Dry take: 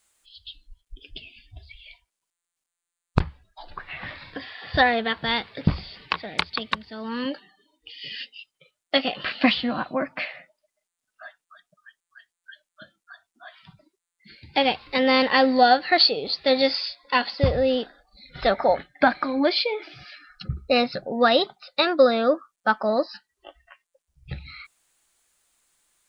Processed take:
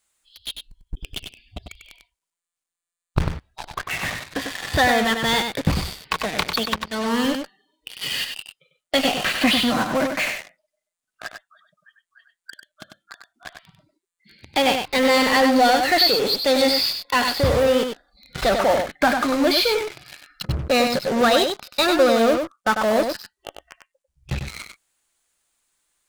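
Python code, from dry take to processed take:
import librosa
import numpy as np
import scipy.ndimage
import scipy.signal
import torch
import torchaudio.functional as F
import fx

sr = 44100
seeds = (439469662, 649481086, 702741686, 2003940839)

p1 = fx.fuzz(x, sr, gain_db=41.0, gate_db=-37.0)
p2 = x + (p1 * librosa.db_to_amplitude(-5.0))
p3 = p2 + 10.0 ** (-6.0 / 20.0) * np.pad(p2, (int(97 * sr / 1000.0), 0))[:len(p2)]
y = p3 * librosa.db_to_amplitude(-4.0)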